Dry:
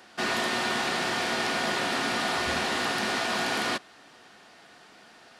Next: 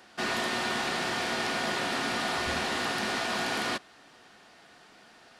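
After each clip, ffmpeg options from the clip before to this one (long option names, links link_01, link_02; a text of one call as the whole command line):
ffmpeg -i in.wav -af "lowshelf=frequency=67:gain=7,volume=-2.5dB" out.wav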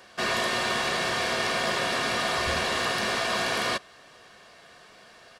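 ffmpeg -i in.wav -af "aecho=1:1:1.8:0.49,volume=3dB" out.wav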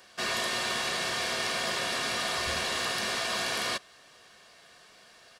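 ffmpeg -i in.wav -af "highshelf=frequency=2900:gain=8,volume=-6.5dB" out.wav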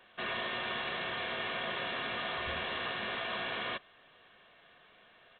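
ffmpeg -i in.wav -af "volume=-4.5dB" -ar 8000 -c:a pcm_alaw out.wav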